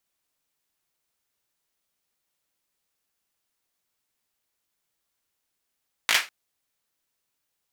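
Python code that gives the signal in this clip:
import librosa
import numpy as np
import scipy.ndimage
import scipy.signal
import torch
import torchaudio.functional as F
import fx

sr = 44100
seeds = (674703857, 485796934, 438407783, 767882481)

y = fx.drum_clap(sr, seeds[0], length_s=0.2, bursts=4, spacing_ms=18, hz=2100.0, decay_s=0.24)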